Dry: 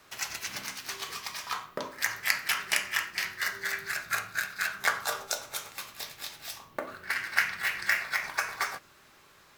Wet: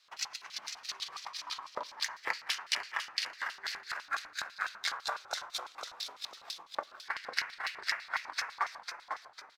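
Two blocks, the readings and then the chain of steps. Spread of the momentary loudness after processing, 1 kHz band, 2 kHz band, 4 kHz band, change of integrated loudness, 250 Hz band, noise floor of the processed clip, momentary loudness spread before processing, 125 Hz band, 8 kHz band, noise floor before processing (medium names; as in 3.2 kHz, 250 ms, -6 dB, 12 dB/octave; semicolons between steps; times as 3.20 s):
8 LU, -2.5 dB, -8.0 dB, -1.5 dB, -6.0 dB, -13.0 dB, -58 dBFS, 12 LU, under -15 dB, -7.5 dB, -58 dBFS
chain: LFO band-pass square 6 Hz 970–4200 Hz; frequency-shifting echo 499 ms, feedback 41%, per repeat -94 Hz, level -6 dB; transient shaper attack +5 dB, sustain -2 dB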